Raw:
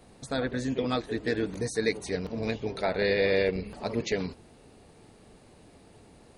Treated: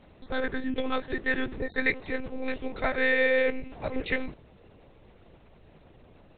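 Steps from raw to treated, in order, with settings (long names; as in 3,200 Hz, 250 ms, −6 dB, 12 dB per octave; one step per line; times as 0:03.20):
dynamic equaliser 1,800 Hz, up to +7 dB, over −45 dBFS, Q 1.8
one-pitch LPC vocoder at 8 kHz 260 Hz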